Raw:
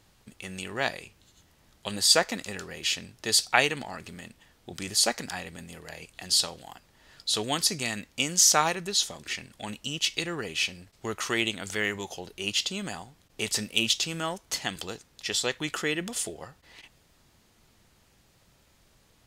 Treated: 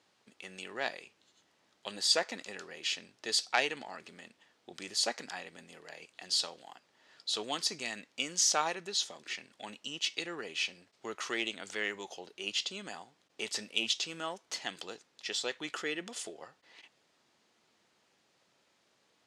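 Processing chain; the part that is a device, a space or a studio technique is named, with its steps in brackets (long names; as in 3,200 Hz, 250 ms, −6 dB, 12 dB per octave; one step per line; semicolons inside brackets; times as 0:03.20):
public-address speaker with an overloaded transformer (saturating transformer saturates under 2,100 Hz; band-pass filter 290–6,600 Hz)
level −5.5 dB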